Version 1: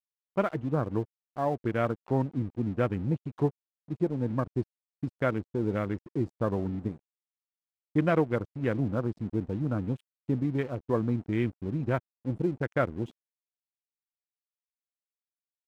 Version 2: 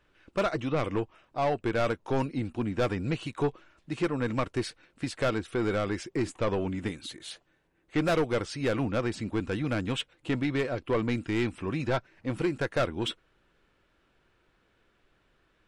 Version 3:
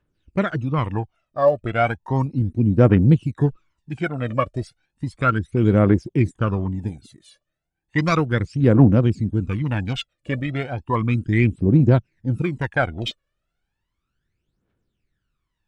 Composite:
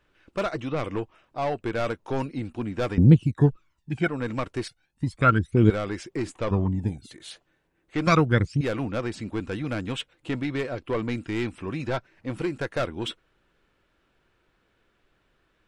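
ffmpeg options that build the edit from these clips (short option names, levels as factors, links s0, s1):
-filter_complex "[2:a]asplit=4[s0][s1][s2][s3];[1:a]asplit=5[s4][s5][s6][s7][s8];[s4]atrim=end=2.982[s9];[s0]atrim=start=2.978:end=4.082[s10];[s5]atrim=start=4.078:end=4.682[s11];[s1]atrim=start=4.678:end=5.702[s12];[s6]atrim=start=5.698:end=6.512[s13];[s2]atrim=start=6.508:end=7.112[s14];[s7]atrim=start=7.108:end=8.072[s15];[s3]atrim=start=8.068:end=8.612[s16];[s8]atrim=start=8.608[s17];[s9][s10]acrossfade=d=0.004:c1=hsin:c2=hsin[s18];[s18][s11]acrossfade=d=0.004:c1=hsin:c2=hsin[s19];[s19][s12]acrossfade=d=0.004:c1=hsin:c2=hsin[s20];[s20][s13]acrossfade=d=0.004:c1=hsin:c2=hsin[s21];[s21][s14]acrossfade=d=0.004:c1=hsin:c2=hsin[s22];[s22][s15]acrossfade=d=0.004:c1=hsin:c2=hsin[s23];[s23][s16]acrossfade=d=0.004:c1=hsin:c2=hsin[s24];[s24][s17]acrossfade=d=0.004:c1=hsin:c2=hsin"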